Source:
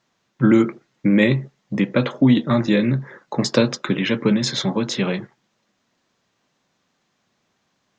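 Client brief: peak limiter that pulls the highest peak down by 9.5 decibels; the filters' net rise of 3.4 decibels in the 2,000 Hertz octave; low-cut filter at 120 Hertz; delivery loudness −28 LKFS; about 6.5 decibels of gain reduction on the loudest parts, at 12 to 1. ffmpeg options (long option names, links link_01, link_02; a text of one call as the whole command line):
ffmpeg -i in.wav -af "highpass=120,equalizer=frequency=2000:width_type=o:gain=4,acompressor=threshold=-16dB:ratio=12,volume=-1.5dB,alimiter=limit=-17.5dB:level=0:latency=1" out.wav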